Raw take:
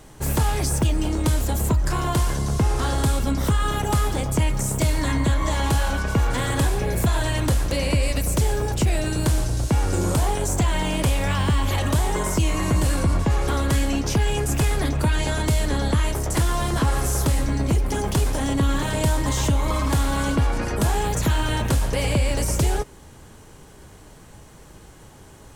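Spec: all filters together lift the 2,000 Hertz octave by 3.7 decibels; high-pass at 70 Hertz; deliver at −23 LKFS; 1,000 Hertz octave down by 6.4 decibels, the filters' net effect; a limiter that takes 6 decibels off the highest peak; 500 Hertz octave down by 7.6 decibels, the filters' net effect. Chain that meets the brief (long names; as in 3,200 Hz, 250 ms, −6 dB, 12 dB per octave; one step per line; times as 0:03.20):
high-pass filter 70 Hz
parametric band 500 Hz −8.5 dB
parametric band 1,000 Hz −7.5 dB
parametric band 2,000 Hz +7.5 dB
level +3 dB
brickwall limiter −13.5 dBFS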